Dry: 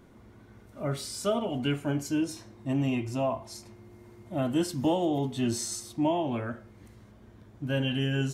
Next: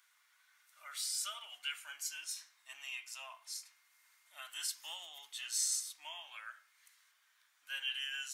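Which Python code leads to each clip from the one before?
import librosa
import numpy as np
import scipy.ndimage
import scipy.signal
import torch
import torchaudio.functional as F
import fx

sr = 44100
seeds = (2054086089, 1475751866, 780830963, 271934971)

y = scipy.signal.sosfilt(scipy.signal.butter(4, 1400.0, 'highpass', fs=sr, output='sos'), x)
y = fx.high_shelf(y, sr, hz=4200.0, db=7.5)
y = F.gain(torch.from_numpy(y), -4.5).numpy()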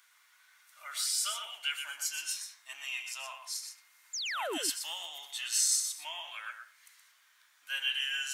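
y = fx.spec_paint(x, sr, seeds[0], shape='fall', start_s=4.13, length_s=0.45, low_hz=260.0, high_hz=7500.0, level_db=-42.0)
y = y + 10.0 ** (-7.5 / 20.0) * np.pad(y, (int(122 * sr / 1000.0), 0))[:len(y)]
y = F.gain(torch.from_numpy(y), 6.0).numpy()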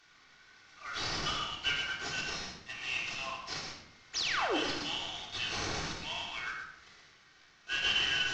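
y = fx.cvsd(x, sr, bps=32000)
y = fx.room_shoebox(y, sr, seeds[1], volume_m3=2100.0, walls='furnished', distance_m=3.5)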